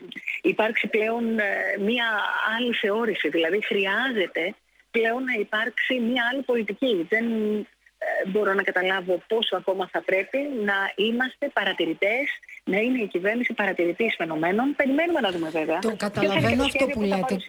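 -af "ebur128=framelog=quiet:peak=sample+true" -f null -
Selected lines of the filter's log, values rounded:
Integrated loudness:
  I:         -24.1 LUFS
  Threshold: -34.2 LUFS
Loudness range:
  LRA:         1.5 LU
  Threshold: -44.3 LUFS
  LRA low:   -24.9 LUFS
  LRA high:  -23.5 LUFS
Sample peak:
  Peak:       -8.0 dBFS
True peak:
  Peak:       -8.0 dBFS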